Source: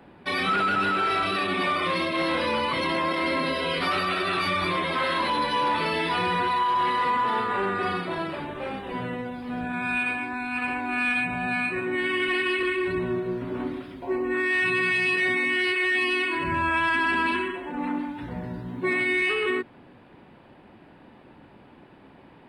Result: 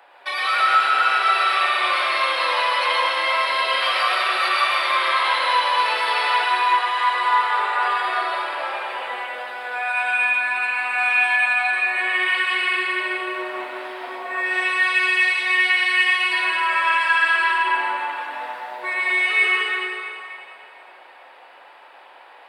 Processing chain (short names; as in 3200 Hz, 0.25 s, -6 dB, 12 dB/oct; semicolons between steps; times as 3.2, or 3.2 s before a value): HPF 650 Hz 24 dB/oct; in parallel at -1.5 dB: compressor, threshold -38 dBFS, peak gain reduction 15 dB; on the sum: plate-style reverb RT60 2.6 s, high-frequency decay 0.9×, pre-delay 95 ms, DRR -4.5 dB